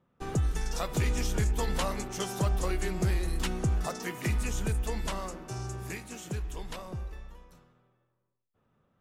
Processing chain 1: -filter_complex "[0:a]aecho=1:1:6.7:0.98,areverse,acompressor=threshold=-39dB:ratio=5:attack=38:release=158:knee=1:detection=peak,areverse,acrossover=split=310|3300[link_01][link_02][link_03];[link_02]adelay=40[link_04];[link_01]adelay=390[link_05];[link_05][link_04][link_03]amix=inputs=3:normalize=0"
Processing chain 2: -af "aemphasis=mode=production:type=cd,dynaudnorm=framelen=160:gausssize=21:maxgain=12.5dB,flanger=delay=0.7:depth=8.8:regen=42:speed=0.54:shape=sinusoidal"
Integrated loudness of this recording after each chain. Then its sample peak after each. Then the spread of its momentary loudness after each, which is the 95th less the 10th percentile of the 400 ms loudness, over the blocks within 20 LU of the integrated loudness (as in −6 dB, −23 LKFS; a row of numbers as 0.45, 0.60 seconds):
−41.5, −25.0 LKFS; −25.0, −8.0 dBFS; 8, 15 LU